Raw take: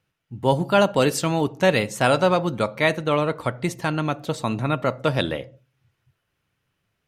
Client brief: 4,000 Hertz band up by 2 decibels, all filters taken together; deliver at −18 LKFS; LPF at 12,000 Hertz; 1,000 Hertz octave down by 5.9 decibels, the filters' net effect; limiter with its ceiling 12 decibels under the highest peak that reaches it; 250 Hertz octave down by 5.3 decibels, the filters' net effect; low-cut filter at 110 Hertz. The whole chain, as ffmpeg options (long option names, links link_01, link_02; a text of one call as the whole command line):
ffmpeg -i in.wav -af "highpass=110,lowpass=12000,equalizer=frequency=250:width_type=o:gain=-7,equalizer=frequency=1000:width_type=o:gain=-8,equalizer=frequency=4000:width_type=o:gain=3,volume=12dB,alimiter=limit=-5.5dB:level=0:latency=1" out.wav